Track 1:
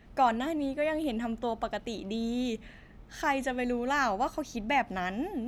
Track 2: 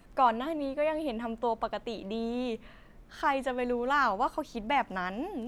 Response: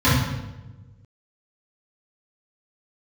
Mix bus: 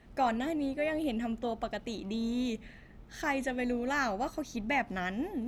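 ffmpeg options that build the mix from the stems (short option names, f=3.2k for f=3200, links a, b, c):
-filter_complex "[0:a]volume=-2dB[a];[1:a]tremolo=f=190:d=0.621,volume=-8dB[b];[a][b]amix=inputs=2:normalize=0"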